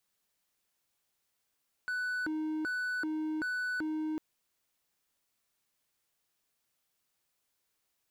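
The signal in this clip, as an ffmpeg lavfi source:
-f lavfi -i "aevalsrc='0.0335*(1-4*abs(mod((900.5*t+589.5/1.3*(0.5-abs(mod(1.3*t,1)-0.5)))+0.25,1)-0.5))':d=2.3:s=44100"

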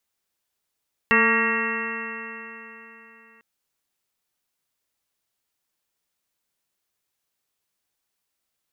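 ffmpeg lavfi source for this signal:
-f lavfi -i "aevalsrc='0.0668*pow(10,-3*t/3.6)*sin(2*PI*224.19*t)+0.0668*pow(10,-3*t/3.6)*sin(2*PI*449.52*t)+0.00891*pow(10,-3*t/3.6)*sin(2*PI*677.12*t)+0.0376*pow(10,-3*t/3.6)*sin(2*PI*908.1*t)+0.0708*pow(10,-3*t/3.6)*sin(2*PI*1143.55*t)+0.0473*pow(10,-3*t/3.6)*sin(2*PI*1384.52*t)+0.0473*pow(10,-3*t/3.6)*sin(2*PI*1632*t)+0.133*pow(10,-3*t/3.6)*sin(2*PI*1886.97*t)+0.0473*pow(10,-3*t/3.6)*sin(2*PI*2150.33*t)+0.00841*pow(10,-3*t/3.6)*sin(2*PI*2422.93*t)+0.0841*pow(10,-3*t/3.6)*sin(2*PI*2705.58*t)':d=2.3:s=44100"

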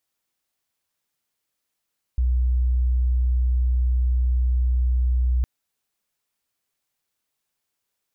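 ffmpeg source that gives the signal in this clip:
-f lavfi -i "sine=f=62:d=3.26:r=44100,volume=1.06dB"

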